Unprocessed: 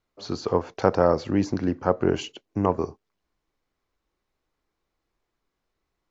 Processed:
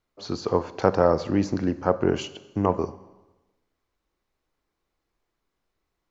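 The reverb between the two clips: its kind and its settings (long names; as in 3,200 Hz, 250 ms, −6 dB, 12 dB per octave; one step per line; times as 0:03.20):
four-comb reverb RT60 1.1 s, combs from 32 ms, DRR 15 dB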